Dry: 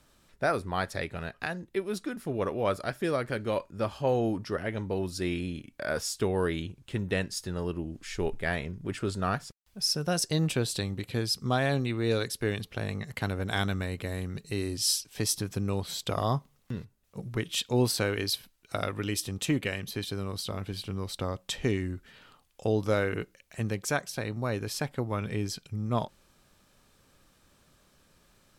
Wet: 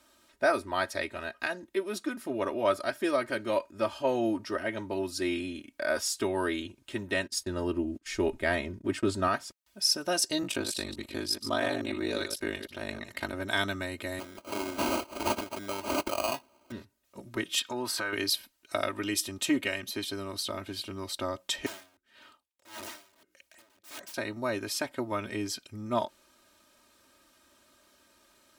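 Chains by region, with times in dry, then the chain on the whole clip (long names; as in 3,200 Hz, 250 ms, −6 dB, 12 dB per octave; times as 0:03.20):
0:07.27–0:09.28: noise gate −44 dBFS, range −23 dB + low-shelf EQ 370 Hz +8 dB
0:10.42–0:13.33: delay that plays each chunk backwards 107 ms, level −9 dB + ring modulation 25 Hz
0:14.19–0:16.72: spectral tilt +3.5 dB per octave + downward compressor 12 to 1, threshold −24 dBFS + sample-rate reduction 1,800 Hz
0:17.59–0:18.13: parametric band 1,300 Hz +12 dB 1.4 octaves + downward compressor 4 to 1, threshold −31 dBFS
0:21.66–0:24.14: downward compressor 4 to 1, threshold −31 dBFS + wrap-around overflow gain 36.5 dB + tremolo with a sine in dB 1.7 Hz, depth 26 dB
whole clip: high-pass filter 300 Hz 6 dB per octave; comb filter 3.2 ms, depth 84%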